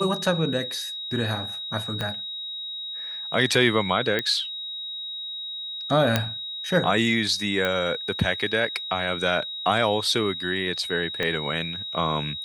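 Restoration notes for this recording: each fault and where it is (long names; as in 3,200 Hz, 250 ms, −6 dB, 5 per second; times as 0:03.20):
whistle 3,800 Hz −31 dBFS
0:02.01: click −14 dBFS
0:04.19: click −11 dBFS
0:06.16: click −5 dBFS
0:07.65: click −12 dBFS
0:11.23: click −13 dBFS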